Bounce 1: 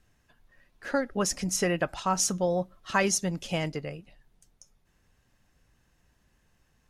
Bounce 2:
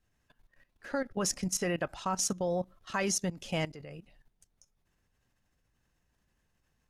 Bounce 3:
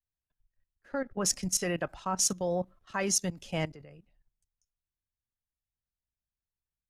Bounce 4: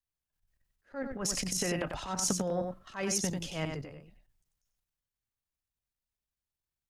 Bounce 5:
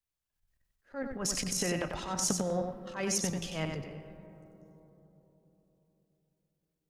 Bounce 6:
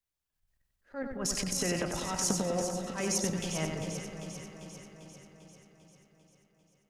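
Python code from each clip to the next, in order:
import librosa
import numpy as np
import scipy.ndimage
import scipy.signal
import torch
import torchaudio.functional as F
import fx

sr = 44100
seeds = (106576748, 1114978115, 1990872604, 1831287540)

y1 = fx.level_steps(x, sr, step_db=15)
y2 = fx.band_widen(y1, sr, depth_pct=70)
y3 = fx.transient(y2, sr, attack_db=-11, sustain_db=9)
y3 = y3 + 10.0 ** (-5.5 / 20.0) * np.pad(y3, (int(93 * sr / 1000.0), 0))[:len(y3)]
y3 = F.gain(torch.from_numpy(y3), -1.0).numpy()
y4 = fx.rev_freeverb(y3, sr, rt60_s=4.1, hf_ratio=0.25, predelay_ms=85, drr_db=13.0)
y5 = fx.echo_alternate(y4, sr, ms=198, hz=1100.0, feedback_pct=78, wet_db=-6.5)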